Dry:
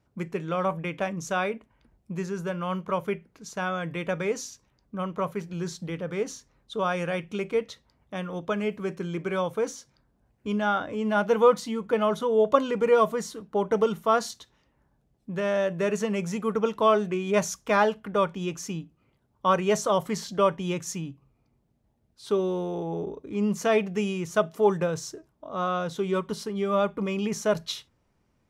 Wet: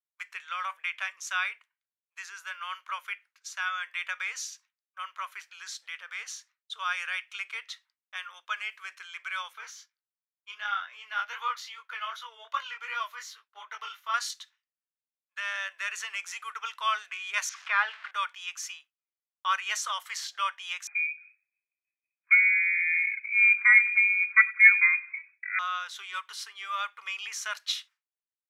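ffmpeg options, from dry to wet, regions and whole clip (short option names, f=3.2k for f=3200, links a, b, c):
-filter_complex "[0:a]asettb=1/sr,asplit=3[a][b][c];[a]atrim=end=9.534[d];[b]atrim=start=9.53:end=14.14,asetpts=PTS-STARTPTS,afade=t=in:d=0.004:c=qsin,afade=t=out:st=4.606:d=0.004:c=qsin,equalizer=f=8.6k:t=o:w=0.43:g=-14,flanger=delay=19:depth=5.6:speed=2.6[e];[c]atrim=start=14.136[f];[d][e]acrossfade=d=0.004:c1=hsin:c2=qsin[g];[g][f]acrossfade=d=0.004:c1=qsin:c2=hsin,asettb=1/sr,asplit=3[h][i][j];[h]atrim=end=17.494[k];[i]atrim=start=17.49:end=18.11,asetpts=PTS-STARTPTS,afade=t=in:d=0.004:c=qsin,afade=t=out:st=0.616:d=0.004:c=qsin,aeval=exprs='val(0)+0.5*0.0211*sgn(val(0))':c=same,lowpass=2.6k[l];[j]atrim=start=18.106[m];[k][l]acrossfade=d=0.004:c1=hsin:c2=qsin[n];[n][m]acrossfade=d=0.004:c1=qsin:c2=hsin,asettb=1/sr,asplit=3[o][p][q];[o]atrim=end=20.874[r];[p]atrim=start=20.87:end=25.59,asetpts=PTS-STARTPTS,afade=t=in:d=0.004:c=qsin,afade=t=out:st=4.716:d=0.004:c=qsin,aecho=1:1:96|192|288:0.0841|0.037|0.0163,atrim=end_sample=208152,lowpass=f=2.2k:t=q:w=0.5098,lowpass=f=2.2k:t=q:w=0.6013,lowpass=f=2.2k:t=q:w=0.9,lowpass=f=2.2k:t=q:w=2.563,afreqshift=-2600[s];[q]atrim=start=25.586[t];[r][s]acrossfade=d=0.004:c1=hsin:c2=qsin[u];[u][t]acrossfade=d=0.004:c1=qsin:c2=hsin,highpass=f=1.3k:w=0.5412,highpass=f=1.3k:w=1.3066,agate=range=-33dB:threshold=-53dB:ratio=3:detection=peak,equalizer=f=2.3k:t=o:w=2.6:g=6,volume=-1.5dB"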